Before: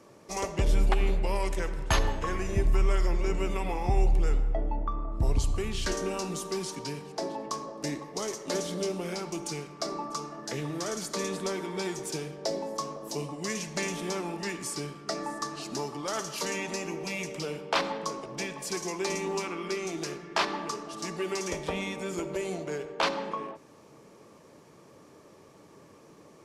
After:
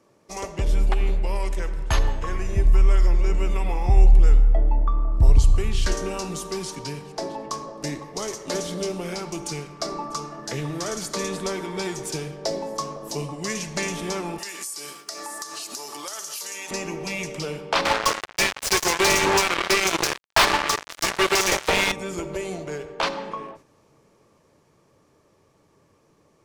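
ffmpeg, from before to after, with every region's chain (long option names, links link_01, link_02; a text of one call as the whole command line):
ffmpeg -i in.wav -filter_complex "[0:a]asettb=1/sr,asplit=3[link_01][link_02][link_03];[link_01]atrim=end=14.384[link_04];[link_02]atrim=start=14.38:end=16.71,asetpts=PTS-STARTPTS,afade=type=in:duration=0.004:curve=qsin,afade=type=out:start_time=2.326:duration=0.004:curve=qsin,highpass=240,aemphasis=mode=production:type=riaa,acompressor=threshold=-35dB:ratio=8:attack=3.2:release=140:knee=1:detection=peak[link_05];[link_03]atrim=start=16.706[link_06];[link_04][link_05]acrossfade=duration=0.004:curve1=hsin:curve2=qsin[link_07];[link_07][link_06]acrossfade=duration=0.004:curve1=qsin:curve2=hsin,asettb=1/sr,asplit=3[link_08][link_09][link_10];[link_08]atrim=end=17.854[link_11];[link_09]atrim=start=17.85:end=21.92,asetpts=PTS-STARTPTS,afade=type=in:duration=0.004:curve=qsin,afade=type=out:start_time=4.066:duration=0.004:curve=qsin,bandreject=frequency=1200:width=28,acrusher=bits=4:mix=0:aa=0.5,asplit=2[link_12][link_13];[link_13]highpass=frequency=720:poles=1,volume=21dB,asoftclip=type=tanh:threshold=-13.5dB[link_14];[link_12][link_14]amix=inputs=2:normalize=0,lowpass=frequency=6700:poles=1,volume=-6dB[link_15];[link_10]atrim=start=21.916[link_16];[link_11][link_15]acrossfade=duration=0.004:curve1=hsin:curve2=qsin[link_17];[link_17][link_16]acrossfade=duration=0.004:curve1=qsin:curve2=hsin,agate=range=-6dB:threshold=-48dB:ratio=16:detection=peak,asubboost=boost=2.5:cutoff=120,dynaudnorm=framelen=240:gausssize=31:maxgain=5dB" out.wav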